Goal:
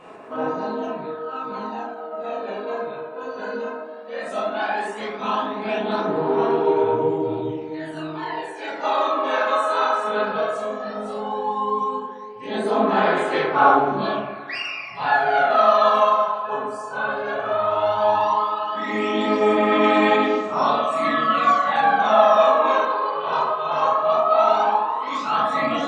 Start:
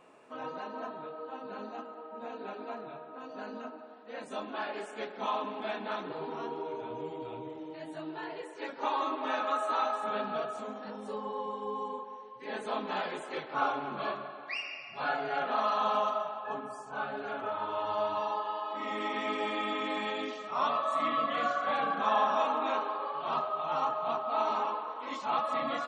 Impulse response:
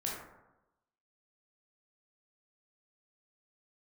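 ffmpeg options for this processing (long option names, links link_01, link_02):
-filter_complex "[1:a]atrim=start_sample=2205,afade=type=out:start_time=0.21:duration=0.01,atrim=end_sample=9702[link_01];[0:a][link_01]afir=irnorm=-1:irlink=0,aphaser=in_gain=1:out_gain=1:delay=2:decay=0.54:speed=0.15:type=sinusoidal,volume=8dB"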